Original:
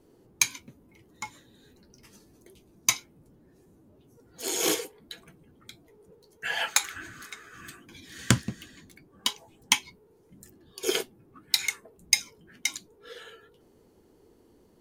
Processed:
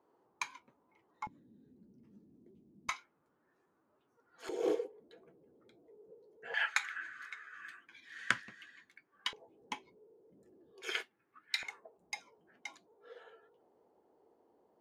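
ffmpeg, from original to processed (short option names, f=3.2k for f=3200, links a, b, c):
-af "asetnsamples=n=441:p=0,asendcmd='1.27 bandpass f 220;2.89 bandpass f 1300;4.49 bandpass f 480;6.54 bandpass f 1700;9.33 bandpass f 480;10.82 bandpass f 1800;11.63 bandpass f 740',bandpass=f=990:t=q:w=2.2:csg=0"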